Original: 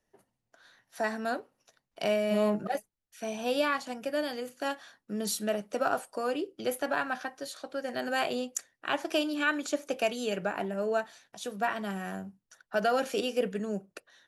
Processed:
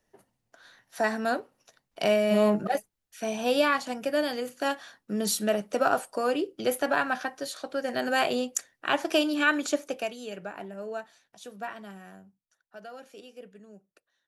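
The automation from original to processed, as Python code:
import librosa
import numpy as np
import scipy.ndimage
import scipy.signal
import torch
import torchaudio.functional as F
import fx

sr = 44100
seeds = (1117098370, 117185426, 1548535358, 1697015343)

y = fx.gain(x, sr, db=fx.line((9.71, 4.5), (10.17, -6.5), (11.62, -6.5), (12.76, -17.0)))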